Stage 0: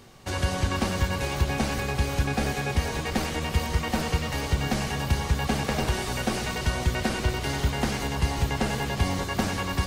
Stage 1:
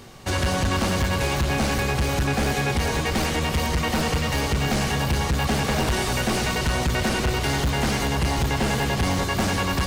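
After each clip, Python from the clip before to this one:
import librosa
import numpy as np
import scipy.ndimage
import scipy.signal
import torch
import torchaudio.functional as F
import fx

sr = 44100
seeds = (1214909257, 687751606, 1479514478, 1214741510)

y = np.clip(x, -10.0 ** (-25.0 / 20.0), 10.0 ** (-25.0 / 20.0))
y = y * librosa.db_to_amplitude(6.5)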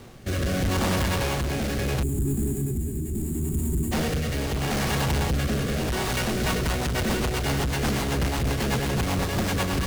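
y = fx.halfwave_hold(x, sr)
y = fx.rotary_switch(y, sr, hz=0.75, then_hz=8.0, switch_at_s=6.01)
y = fx.spec_box(y, sr, start_s=2.03, length_s=1.89, low_hz=430.0, high_hz=6700.0, gain_db=-25)
y = y * librosa.db_to_amplitude(-3.0)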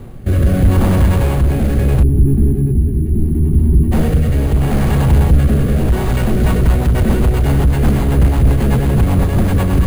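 y = fx.tilt_eq(x, sr, slope=-3.0)
y = np.repeat(scipy.signal.resample_poly(y, 1, 4), 4)[:len(y)]
y = y * librosa.db_to_amplitude(4.5)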